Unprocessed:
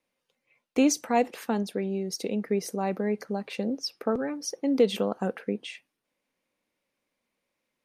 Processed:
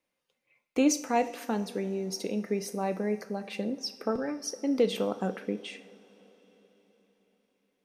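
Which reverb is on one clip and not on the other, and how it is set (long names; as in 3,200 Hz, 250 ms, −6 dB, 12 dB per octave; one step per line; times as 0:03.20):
coupled-rooms reverb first 0.48 s, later 4.6 s, from −18 dB, DRR 9 dB
level −2.5 dB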